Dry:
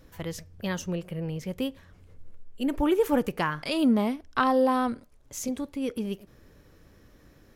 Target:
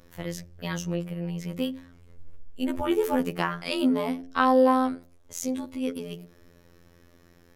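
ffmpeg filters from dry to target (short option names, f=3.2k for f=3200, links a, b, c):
-af "afftfilt=real='hypot(re,im)*cos(PI*b)':imag='0':win_size=2048:overlap=0.75,bandreject=f=87.93:t=h:w=4,bandreject=f=175.86:t=h:w=4,bandreject=f=263.79:t=h:w=4,bandreject=f=351.72:t=h:w=4,bandreject=f=439.65:t=h:w=4,bandreject=f=527.58:t=h:w=4,bandreject=f=615.51:t=h:w=4,bandreject=f=703.44:t=h:w=4,bandreject=f=791.37:t=h:w=4,volume=4dB"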